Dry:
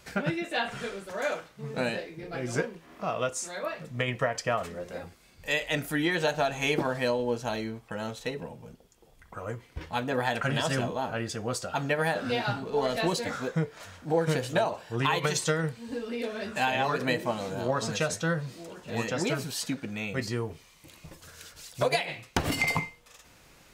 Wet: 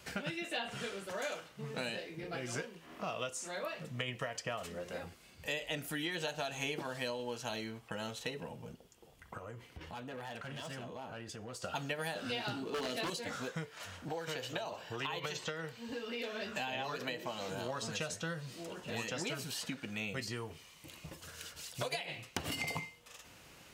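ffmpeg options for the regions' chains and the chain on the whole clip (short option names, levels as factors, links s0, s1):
-filter_complex "[0:a]asettb=1/sr,asplit=3[s0][s1][s2];[s0]atrim=end=9.374[s3];[s1]atrim=start=9.37:end=11.64,asetpts=PTS-STARTPTS,afade=t=in:d=0.004:c=qsin,afade=t=out:st=2.266:d=0.004:c=qsin,asoftclip=type=hard:threshold=0.0531,acompressor=threshold=0.00794:ratio=6:attack=3.2:release=140:knee=1:detection=peak[s4];[s2]atrim=start=11.636[s5];[s3][s4]acrossfade=d=0.004:c1=hsin:c2=qsin[s6];[s6][s5]acrossfade=d=0.004:c1=qsin:c2=hsin,asettb=1/sr,asplit=3[s7][s8][s9];[s7]atrim=end=12.464[s10];[s8]atrim=start=12.46:end=13.1,asetpts=PTS-STARTPTS,afade=t=in:d=0.004:c=qsin,afade=t=out:st=0.636:d=0.004:c=qsin,equalizer=f=320:w=1.7:g=13.5,aeval=exprs='0.126*(abs(mod(val(0)/0.126+3,4)-2)-1)':c=same[s11];[s9]atrim=start=13.096[s12];[s10][s11]acrossfade=d=0.004:c1=hsin:c2=qsin[s13];[s13][s12]acrossfade=d=0.004:c1=qsin:c2=hsin,asettb=1/sr,asplit=3[s14][s15][s16];[s14]atrim=end=14.084[s17];[s15]atrim=start=14.08:end=17.49,asetpts=PTS-STARTPTS,afade=t=in:d=0.004:c=qsin,afade=t=out:st=3.406:d=0.004:c=qsin,equalizer=f=9400:t=o:w=0.3:g=-13,acrossover=split=370|3500[s18][s19][s20];[s18]acompressor=threshold=0.00891:ratio=4[s21];[s19]acompressor=threshold=0.0355:ratio=4[s22];[s20]acompressor=threshold=0.00501:ratio=4[s23];[s21][s22][s23]amix=inputs=3:normalize=0[s24];[s16]atrim=start=17.486[s25];[s17][s24]acrossfade=d=0.004:c1=hsin:c2=qsin[s26];[s26][s25]acrossfade=d=0.004:c1=qsin:c2=hsin,highpass=59,equalizer=f=2900:w=7.3:g=6,acrossover=split=880|2900[s27][s28][s29];[s27]acompressor=threshold=0.01:ratio=4[s30];[s28]acompressor=threshold=0.00631:ratio=4[s31];[s29]acompressor=threshold=0.00891:ratio=4[s32];[s30][s31][s32]amix=inputs=3:normalize=0,volume=0.891"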